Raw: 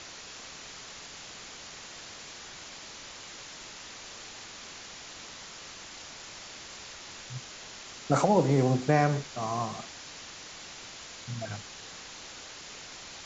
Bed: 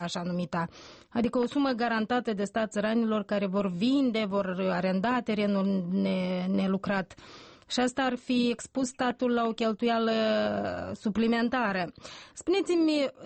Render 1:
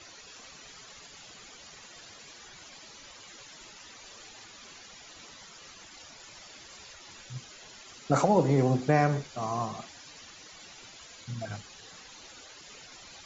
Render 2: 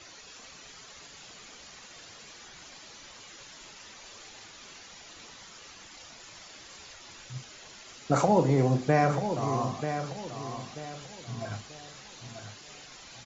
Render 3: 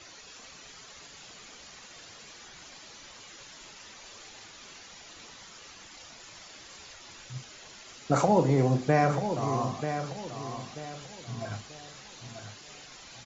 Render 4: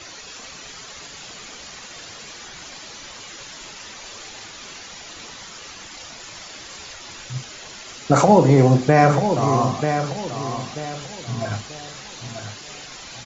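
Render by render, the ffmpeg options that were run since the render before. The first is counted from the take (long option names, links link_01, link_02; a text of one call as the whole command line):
ffmpeg -i in.wav -af "afftdn=noise_reduction=13:noise_floor=-46" out.wav
ffmpeg -i in.wav -filter_complex "[0:a]asplit=2[link_01][link_02];[link_02]adelay=38,volume=-11.5dB[link_03];[link_01][link_03]amix=inputs=2:normalize=0,asplit=2[link_04][link_05];[link_05]adelay=937,lowpass=frequency=3800:poles=1,volume=-8.5dB,asplit=2[link_06][link_07];[link_07]adelay=937,lowpass=frequency=3800:poles=1,volume=0.35,asplit=2[link_08][link_09];[link_09]adelay=937,lowpass=frequency=3800:poles=1,volume=0.35,asplit=2[link_10][link_11];[link_11]adelay=937,lowpass=frequency=3800:poles=1,volume=0.35[link_12];[link_06][link_08][link_10][link_12]amix=inputs=4:normalize=0[link_13];[link_04][link_13]amix=inputs=2:normalize=0" out.wav
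ffmpeg -i in.wav -af anull out.wav
ffmpeg -i in.wav -af "volume=10.5dB,alimiter=limit=-3dB:level=0:latency=1" out.wav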